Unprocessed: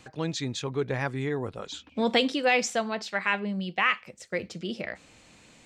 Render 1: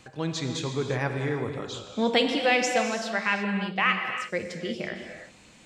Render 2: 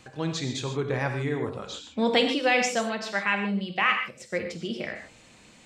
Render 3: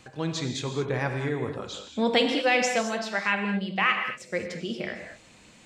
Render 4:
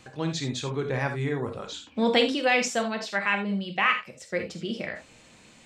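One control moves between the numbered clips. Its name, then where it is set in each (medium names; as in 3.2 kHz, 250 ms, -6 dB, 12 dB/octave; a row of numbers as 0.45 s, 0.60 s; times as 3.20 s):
gated-style reverb, gate: 380 ms, 170 ms, 250 ms, 100 ms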